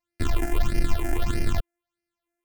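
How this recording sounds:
a buzz of ramps at a fixed pitch in blocks of 128 samples
phaser sweep stages 8, 1.6 Hz, lowest notch 140–1,100 Hz

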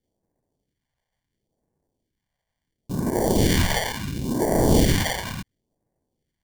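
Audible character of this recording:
aliases and images of a low sample rate 1,300 Hz, jitter 0%
phaser sweep stages 2, 0.72 Hz, lowest notch 300–3,000 Hz

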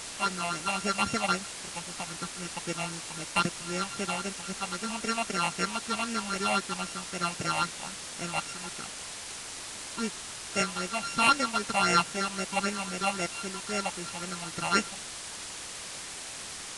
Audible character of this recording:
a buzz of ramps at a fixed pitch in blocks of 32 samples
phaser sweep stages 6, 3.8 Hz, lowest notch 390–1,100 Hz
a quantiser's noise floor 6 bits, dither triangular
Ogg Vorbis

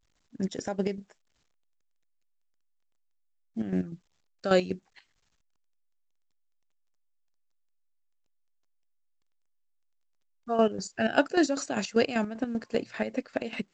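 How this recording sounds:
chopped level 5.1 Hz, depth 65%, duty 45%
A-law companding

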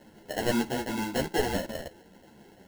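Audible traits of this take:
aliases and images of a low sample rate 1,200 Hz, jitter 0%
a shimmering, thickened sound

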